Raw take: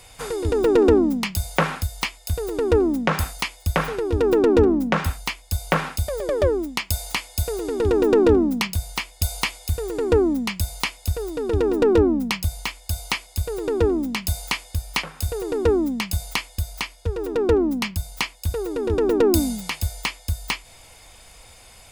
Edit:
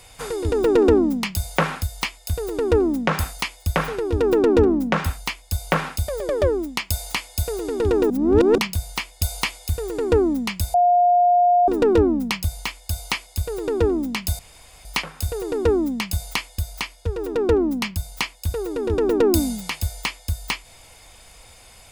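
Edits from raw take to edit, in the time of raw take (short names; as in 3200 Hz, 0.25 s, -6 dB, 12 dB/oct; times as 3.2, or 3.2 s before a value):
8.1–8.58 reverse
10.74–11.68 bleep 709 Hz -12.5 dBFS
14.39–14.85 room tone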